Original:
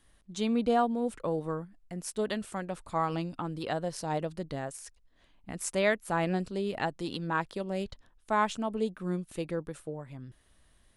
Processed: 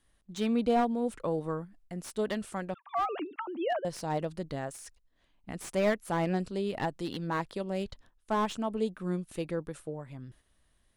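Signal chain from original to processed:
0:02.74–0:03.85: three sine waves on the formant tracks
noise gate −57 dBFS, range −6 dB
slew-rate limiting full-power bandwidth 61 Hz

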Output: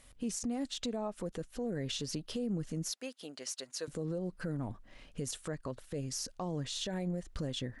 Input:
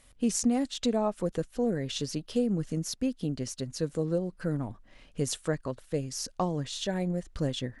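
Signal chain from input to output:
0:02.90–0:03.88: high-pass filter 710 Hz 12 dB per octave
downward compressor, threshold −30 dBFS, peak gain reduction 9 dB
brickwall limiter −28 dBFS, peak gain reduction 10 dB

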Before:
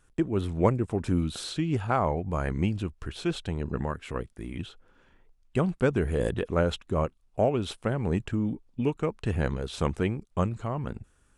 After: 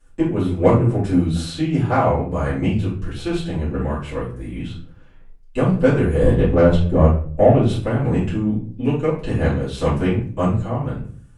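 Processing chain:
0:06.22–0:07.69: spectral tilt −2 dB per octave
harmonic generator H 7 −29 dB, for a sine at −7 dBFS
rectangular room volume 43 cubic metres, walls mixed, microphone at 2.4 metres
level −4 dB

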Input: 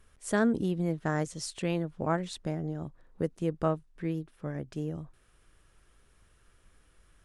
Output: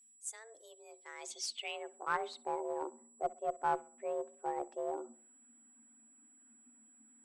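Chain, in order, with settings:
spectral dynamics exaggerated over time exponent 1.5
reversed playback
downward compressor 16 to 1, threshold −40 dBFS, peak gain reduction 19 dB
reversed playback
frequency shifter +220 Hz
harmonic generator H 2 −25 dB, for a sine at −29 dBFS
band-pass filter sweep 7,300 Hz → 980 Hz, 0:00.72–0:02.36
steady tone 7,800 Hz −79 dBFS
in parallel at −5 dB: asymmetric clip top −50.5 dBFS
on the sum: tape delay 64 ms, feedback 45%, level −18 dB, low-pass 1,800 Hz
level +13.5 dB

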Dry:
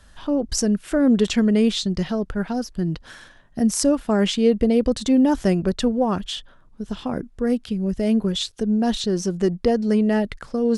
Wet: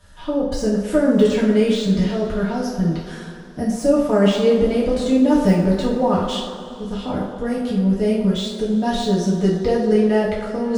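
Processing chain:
de-essing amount 70%
on a send: delay with a band-pass on its return 116 ms, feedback 63%, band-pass 760 Hz, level −7.5 dB
on the sum: coupled-rooms reverb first 0.51 s, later 3.6 s, from −18 dB, DRR −7 dB
level −4.5 dB

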